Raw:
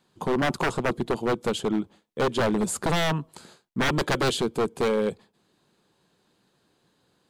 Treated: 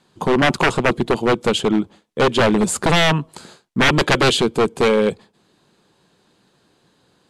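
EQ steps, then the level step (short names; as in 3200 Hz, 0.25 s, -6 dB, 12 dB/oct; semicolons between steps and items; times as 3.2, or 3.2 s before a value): LPF 11000 Hz 12 dB/oct; dynamic EQ 2600 Hz, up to +5 dB, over -42 dBFS, Q 1.5; +8.0 dB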